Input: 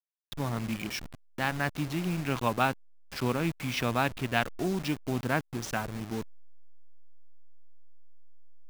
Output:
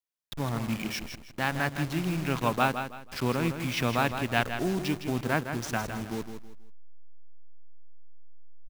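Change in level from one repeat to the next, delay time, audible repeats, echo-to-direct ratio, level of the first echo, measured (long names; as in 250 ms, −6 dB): −11.0 dB, 161 ms, 3, −8.0 dB, −8.5 dB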